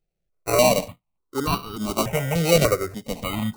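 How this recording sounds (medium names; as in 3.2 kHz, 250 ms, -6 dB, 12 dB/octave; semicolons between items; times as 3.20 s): aliases and images of a low sample rate 1.7 kHz, jitter 0%; notches that jump at a steady rate 3.4 Hz 270–2100 Hz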